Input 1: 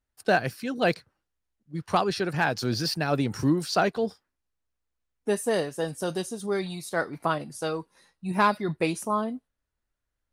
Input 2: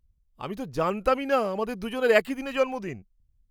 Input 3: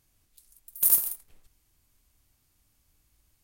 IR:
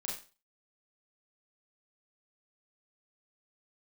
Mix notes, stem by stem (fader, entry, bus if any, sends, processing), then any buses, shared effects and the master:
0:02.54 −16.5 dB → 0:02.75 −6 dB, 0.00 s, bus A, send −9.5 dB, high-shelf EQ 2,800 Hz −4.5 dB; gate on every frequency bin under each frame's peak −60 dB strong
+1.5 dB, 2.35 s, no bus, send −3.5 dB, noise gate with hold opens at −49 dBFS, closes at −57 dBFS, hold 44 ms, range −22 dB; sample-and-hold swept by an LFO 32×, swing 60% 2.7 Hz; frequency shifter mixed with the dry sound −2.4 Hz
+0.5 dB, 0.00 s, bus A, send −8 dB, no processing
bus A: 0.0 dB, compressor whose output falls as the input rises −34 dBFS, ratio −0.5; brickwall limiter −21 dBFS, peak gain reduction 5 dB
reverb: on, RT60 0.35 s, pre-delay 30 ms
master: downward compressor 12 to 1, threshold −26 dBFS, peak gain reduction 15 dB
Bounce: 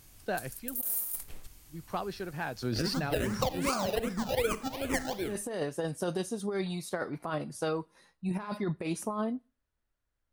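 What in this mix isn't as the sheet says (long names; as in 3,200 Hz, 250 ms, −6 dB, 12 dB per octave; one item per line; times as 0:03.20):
stem 3 +0.5 dB → +7.0 dB
reverb return −10.0 dB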